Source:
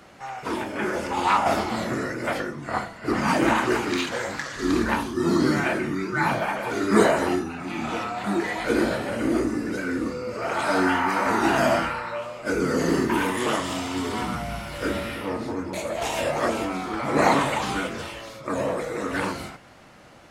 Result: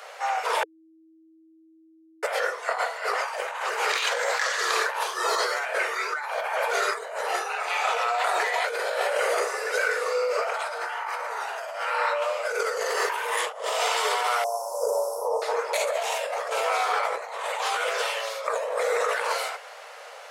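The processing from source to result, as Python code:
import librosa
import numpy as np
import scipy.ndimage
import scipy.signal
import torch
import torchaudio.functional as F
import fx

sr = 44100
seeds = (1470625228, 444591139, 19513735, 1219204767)

y = fx.peak_eq(x, sr, hz=fx.line((13.49, 840.0), (13.89, 150.0)), db=13.5, octaves=1.5, at=(13.49, 13.89), fade=0.02)
y = fx.cheby1_bandstop(y, sr, low_hz=1000.0, high_hz=5600.0, order=4, at=(14.44, 15.42))
y = fx.edit(y, sr, fx.bleep(start_s=0.63, length_s=1.6, hz=322.0, db=-18.5), tone=tone)
y = scipy.signal.sosfilt(scipy.signal.butter(16, 440.0, 'highpass', fs=sr, output='sos'), y)
y = fx.over_compress(y, sr, threshold_db=-32.0, ratio=-1.0)
y = F.gain(torch.from_numpy(y), 4.5).numpy()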